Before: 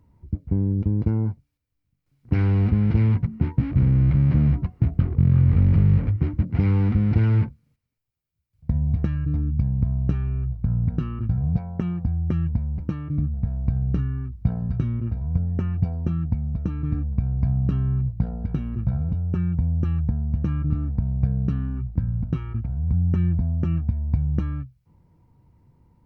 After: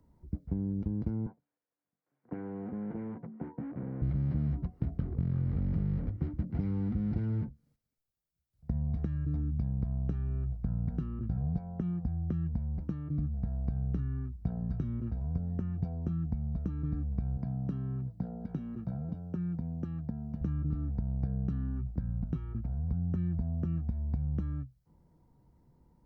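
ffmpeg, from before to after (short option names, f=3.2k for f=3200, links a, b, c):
-filter_complex "[0:a]asettb=1/sr,asplit=3[a][b][c];[a]atrim=end=1.264[d];[b]atrim=start=1.26:end=4.02,asetpts=PTS-STARTPTS,afade=t=in:d=0.004:c=qsin,afade=t=out:st=2.756:d=0.004:c=qsin,highpass=300,equalizer=f=500:t=q:w=4:g=5,equalizer=f=740:t=q:w=4:g=4,equalizer=f=1k:t=q:w=4:g=6,equalizer=f=1.6k:t=q:w=4:g=4,lowpass=f=2.4k:w=0.5412,lowpass=f=2.4k:w=1.3066[e];[c]atrim=start=4.016[f];[d][e]acrossfade=d=0.004:c1=hsin:c2=qsin[g];[g][f]acrossfade=d=0.004:c1=qsin:c2=hsin,asettb=1/sr,asplit=3[h][i][j];[h]atrim=end=17.374[k];[i]atrim=start=17.37:end=20.41,asetpts=PTS-STARTPTS,afade=t=in:d=0.004:c=qsin,afade=t=out:st=3.036:d=0.004:c=qsin,highpass=150[l];[j]atrim=start=20.406[m];[k][l]acrossfade=d=0.004:c1=hsin:c2=qsin[n];[n][m]acrossfade=d=0.004:c1=qsin:c2=hsin,equalizer=f=100:t=o:w=0.67:g=-10,equalizer=f=1k:t=o:w=0.67:g=-4,equalizer=f=2.5k:t=o:w=0.67:g=-9,acrossover=split=240|700[o][p][q];[o]acompressor=threshold=-25dB:ratio=4[r];[p]acompressor=threshold=-42dB:ratio=4[s];[q]acompressor=threshold=-57dB:ratio=4[t];[r][s][t]amix=inputs=3:normalize=0,equalizer=f=730:t=o:w=0.77:g=3,volume=-3.5dB"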